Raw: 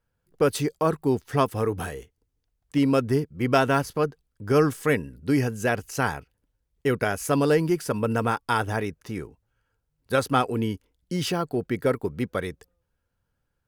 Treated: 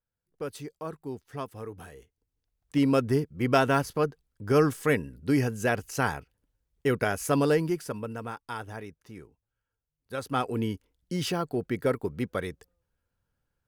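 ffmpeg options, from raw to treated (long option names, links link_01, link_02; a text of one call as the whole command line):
ffmpeg -i in.wav -af "volume=7.5dB,afade=type=in:start_time=1.88:duration=0.92:silence=0.251189,afade=type=out:start_time=7.41:duration=0.72:silence=0.298538,afade=type=in:start_time=10.15:duration=0.42:silence=0.334965" out.wav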